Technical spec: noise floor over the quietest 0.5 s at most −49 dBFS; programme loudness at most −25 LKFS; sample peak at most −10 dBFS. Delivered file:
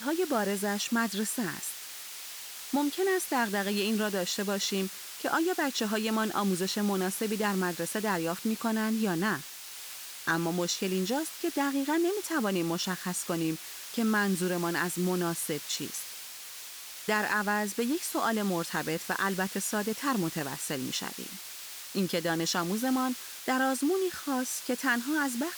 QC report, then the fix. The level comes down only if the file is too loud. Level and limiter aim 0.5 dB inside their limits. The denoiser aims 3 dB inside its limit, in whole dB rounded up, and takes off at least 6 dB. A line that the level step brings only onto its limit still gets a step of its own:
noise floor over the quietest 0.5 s −44 dBFS: out of spec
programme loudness −30.5 LKFS: in spec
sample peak −15.0 dBFS: in spec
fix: broadband denoise 8 dB, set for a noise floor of −44 dBFS

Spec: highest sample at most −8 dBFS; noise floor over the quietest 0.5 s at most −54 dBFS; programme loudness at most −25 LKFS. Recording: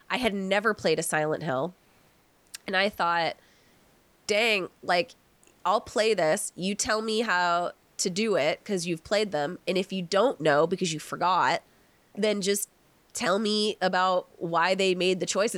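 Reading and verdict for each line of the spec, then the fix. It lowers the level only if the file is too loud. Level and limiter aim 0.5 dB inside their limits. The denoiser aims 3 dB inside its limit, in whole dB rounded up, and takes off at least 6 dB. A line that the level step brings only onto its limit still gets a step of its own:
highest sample −9.0 dBFS: in spec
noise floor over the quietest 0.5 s −62 dBFS: in spec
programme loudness −26.5 LKFS: in spec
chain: no processing needed

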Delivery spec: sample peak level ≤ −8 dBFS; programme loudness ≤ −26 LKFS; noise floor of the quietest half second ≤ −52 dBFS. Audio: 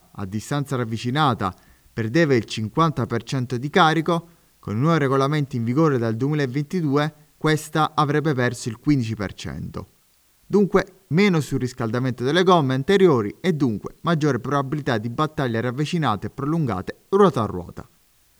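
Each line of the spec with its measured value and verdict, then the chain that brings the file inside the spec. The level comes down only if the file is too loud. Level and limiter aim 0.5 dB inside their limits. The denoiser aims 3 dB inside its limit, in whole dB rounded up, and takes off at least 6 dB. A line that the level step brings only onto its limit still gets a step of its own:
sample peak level −3.0 dBFS: out of spec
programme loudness −21.5 LKFS: out of spec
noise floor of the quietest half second −60 dBFS: in spec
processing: level −5 dB
brickwall limiter −8.5 dBFS

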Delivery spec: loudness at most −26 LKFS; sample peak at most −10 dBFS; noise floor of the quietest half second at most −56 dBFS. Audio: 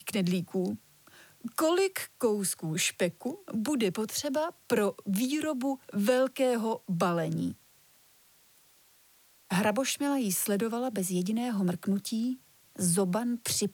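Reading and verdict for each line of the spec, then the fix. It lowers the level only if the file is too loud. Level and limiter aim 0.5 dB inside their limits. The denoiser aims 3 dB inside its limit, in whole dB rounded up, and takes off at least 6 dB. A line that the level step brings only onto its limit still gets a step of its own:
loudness −30.0 LKFS: in spec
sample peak −13.0 dBFS: in spec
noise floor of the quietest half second −62 dBFS: in spec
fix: no processing needed

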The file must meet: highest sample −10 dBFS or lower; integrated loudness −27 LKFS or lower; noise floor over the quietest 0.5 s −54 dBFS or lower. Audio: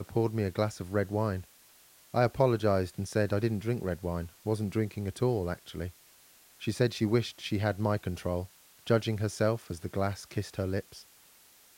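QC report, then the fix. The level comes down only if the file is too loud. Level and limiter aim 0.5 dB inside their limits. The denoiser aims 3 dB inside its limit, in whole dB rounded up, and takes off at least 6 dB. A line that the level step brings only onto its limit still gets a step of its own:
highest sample −10.5 dBFS: in spec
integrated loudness −31.5 LKFS: in spec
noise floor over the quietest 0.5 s −59 dBFS: in spec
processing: no processing needed

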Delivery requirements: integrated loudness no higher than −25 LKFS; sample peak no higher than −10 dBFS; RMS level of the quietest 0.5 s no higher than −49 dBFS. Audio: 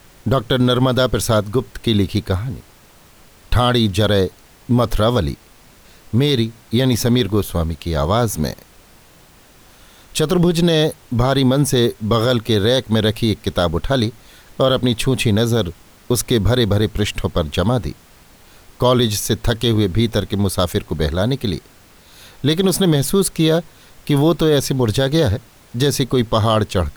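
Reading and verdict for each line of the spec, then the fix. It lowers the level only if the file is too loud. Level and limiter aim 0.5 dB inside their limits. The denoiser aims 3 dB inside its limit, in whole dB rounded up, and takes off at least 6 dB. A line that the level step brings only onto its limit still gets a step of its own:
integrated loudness −18.0 LKFS: out of spec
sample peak −5.0 dBFS: out of spec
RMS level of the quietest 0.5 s −47 dBFS: out of spec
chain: level −7.5 dB

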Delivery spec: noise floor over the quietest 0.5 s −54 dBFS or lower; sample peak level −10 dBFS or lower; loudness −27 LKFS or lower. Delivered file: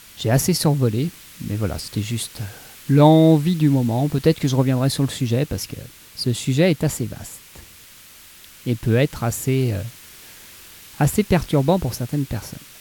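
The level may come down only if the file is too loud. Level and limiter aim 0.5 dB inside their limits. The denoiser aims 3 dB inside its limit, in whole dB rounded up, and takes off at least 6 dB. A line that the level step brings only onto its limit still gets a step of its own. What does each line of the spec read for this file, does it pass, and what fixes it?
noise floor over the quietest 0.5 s −45 dBFS: out of spec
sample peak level −2.5 dBFS: out of spec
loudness −20.0 LKFS: out of spec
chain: broadband denoise 6 dB, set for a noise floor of −45 dBFS
level −7.5 dB
brickwall limiter −10.5 dBFS

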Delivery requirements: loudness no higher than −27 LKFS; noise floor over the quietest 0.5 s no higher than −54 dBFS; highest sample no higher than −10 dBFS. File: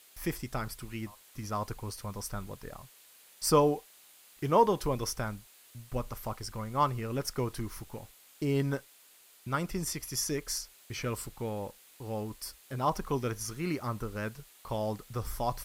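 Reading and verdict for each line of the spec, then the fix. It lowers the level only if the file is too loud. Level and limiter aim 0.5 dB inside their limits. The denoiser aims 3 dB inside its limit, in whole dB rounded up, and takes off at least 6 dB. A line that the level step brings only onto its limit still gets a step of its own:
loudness −33.5 LKFS: in spec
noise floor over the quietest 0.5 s −59 dBFS: in spec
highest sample −11.5 dBFS: in spec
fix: no processing needed

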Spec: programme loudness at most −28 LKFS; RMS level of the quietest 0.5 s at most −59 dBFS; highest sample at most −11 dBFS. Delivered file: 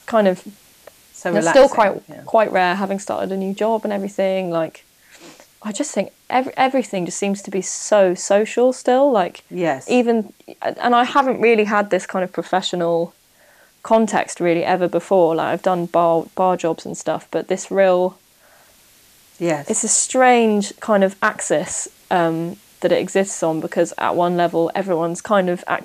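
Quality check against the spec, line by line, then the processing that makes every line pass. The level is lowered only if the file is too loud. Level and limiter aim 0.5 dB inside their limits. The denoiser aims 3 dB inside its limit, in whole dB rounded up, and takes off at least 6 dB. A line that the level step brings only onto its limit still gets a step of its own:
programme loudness −18.5 LKFS: out of spec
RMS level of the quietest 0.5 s −53 dBFS: out of spec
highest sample −3.5 dBFS: out of spec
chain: level −10 dB

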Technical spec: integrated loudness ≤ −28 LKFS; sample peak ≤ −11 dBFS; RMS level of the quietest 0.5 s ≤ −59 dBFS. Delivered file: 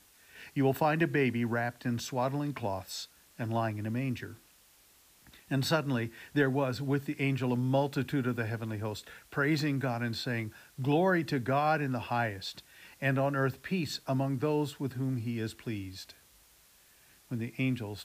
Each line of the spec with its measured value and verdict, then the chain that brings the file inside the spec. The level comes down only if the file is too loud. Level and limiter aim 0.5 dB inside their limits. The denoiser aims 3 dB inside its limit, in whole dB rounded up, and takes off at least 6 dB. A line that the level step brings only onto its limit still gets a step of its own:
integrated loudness −32.0 LKFS: in spec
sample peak −15.5 dBFS: in spec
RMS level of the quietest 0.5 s −62 dBFS: in spec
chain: no processing needed

